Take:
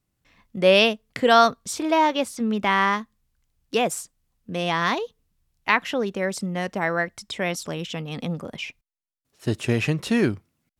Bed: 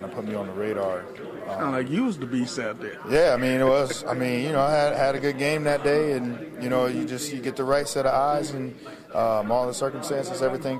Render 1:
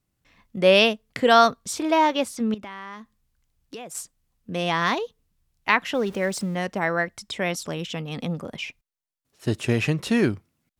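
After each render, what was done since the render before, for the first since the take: 2.54–3.95 compressor 5:1, threshold -36 dBFS; 5.94–6.55 zero-crossing step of -40 dBFS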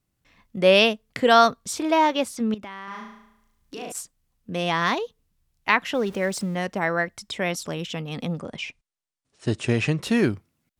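2.84–3.92 flutter echo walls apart 6.2 m, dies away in 0.81 s; 8.38–10.03 brick-wall FIR low-pass 10000 Hz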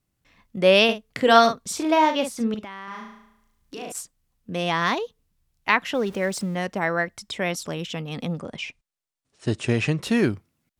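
0.84–2.68 doubler 48 ms -8.5 dB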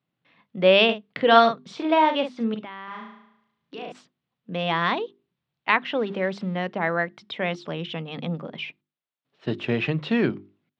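Chebyshev band-pass 140–3600 Hz, order 3; notches 50/100/150/200/250/300/350/400 Hz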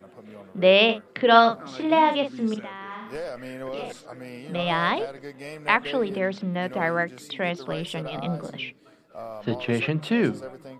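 add bed -14.5 dB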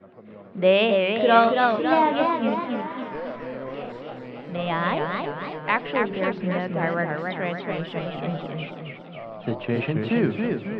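air absorption 300 m; warbling echo 0.274 s, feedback 55%, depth 154 cents, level -4 dB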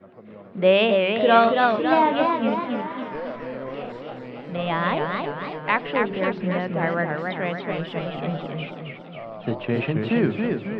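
gain +1 dB; limiter -3 dBFS, peak gain reduction 1 dB

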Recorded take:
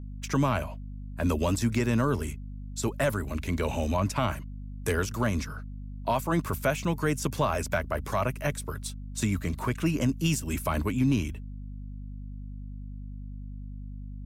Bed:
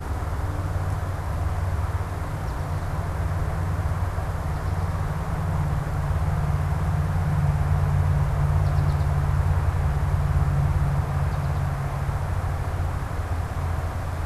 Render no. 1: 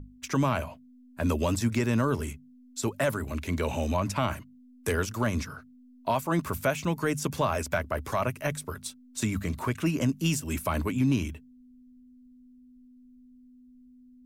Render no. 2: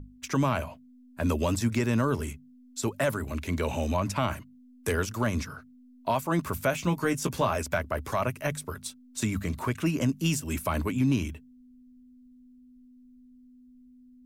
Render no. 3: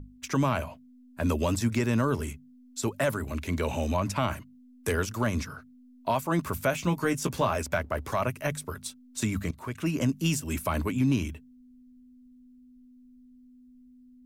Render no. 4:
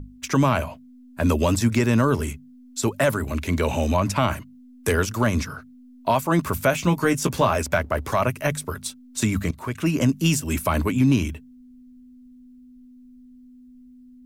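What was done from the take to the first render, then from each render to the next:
notches 50/100/150/200 Hz
6.71–7.54 doubler 17 ms -7 dB
7.17–8.2 backlash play -51.5 dBFS; 9.51–9.98 fade in, from -15.5 dB
gain +6.5 dB

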